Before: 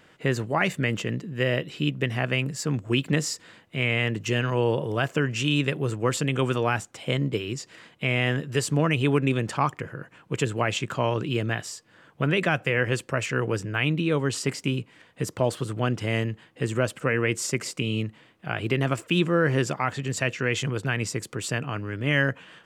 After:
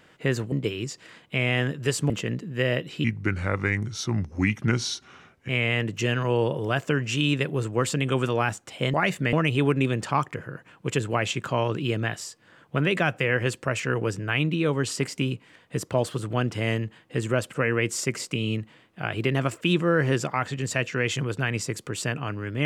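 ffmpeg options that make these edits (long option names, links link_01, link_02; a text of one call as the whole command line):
ffmpeg -i in.wav -filter_complex "[0:a]asplit=7[link_01][link_02][link_03][link_04][link_05][link_06][link_07];[link_01]atrim=end=0.522[link_08];[link_02]atrim=start=7.208:end=8.792[link_09];[link_03]atrim=start=0.908:end=1.854[link_10];[link_04]atrim=start=1.85:end=3.76,asetpts=PTS-STARTPTS,asetrate=34398,aresample=44100,atrim=end_sample=107988,asetpts=PTS-STARTPTS[link_11];[link_05]atrim=start=3.756:end=7.212[link_12];[link_06]atrim=start=0.518:end=0.912[link_13];[link_07]atrim=start=8.788[link_14];[link_08][link_09]acrossfade=duration=0.004:curve1=hsin:curve2=hsin[link_15];[link_15][link_10]acrossfade=duration=0.004:curve1=hsin:curve2=hsin[link_16];[link_16][link_11]acrossfade=duration=0.004:curve1=hsin:curve2=hsin[link_17];[link_17][link_12]acrossfade=duration=0.004:curve1=hsin:curve2=hsin[link_18];[link_18][link_13]acrossfade=duration=0.004:curve1=hsin:curve2=hsin[link_19];[link_19][link_14]acrossfade=duration=0.004:curve1=hsin:curve2=hsin" out.wav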